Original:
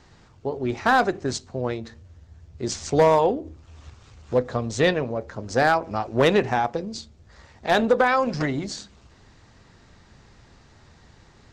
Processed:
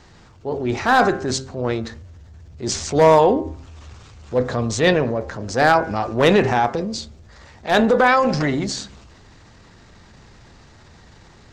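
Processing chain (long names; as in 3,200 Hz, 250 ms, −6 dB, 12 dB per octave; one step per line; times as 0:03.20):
hum removal 132.7 Hz, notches 16
transient designer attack −6 dB, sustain +4 dB
level +5.5 dB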